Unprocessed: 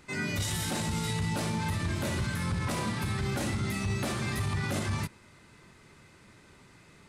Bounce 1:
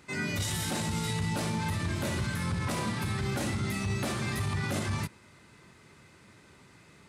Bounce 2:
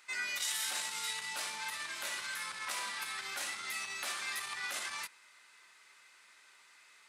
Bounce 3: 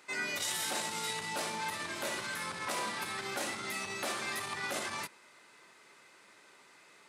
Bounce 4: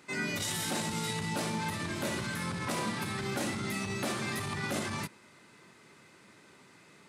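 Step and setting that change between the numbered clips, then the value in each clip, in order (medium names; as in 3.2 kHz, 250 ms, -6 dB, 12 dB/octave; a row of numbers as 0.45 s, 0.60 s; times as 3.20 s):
high-pass, cutoff frequency: 59 Hz, 1.3 kHz, 500 Hz, 190 Hz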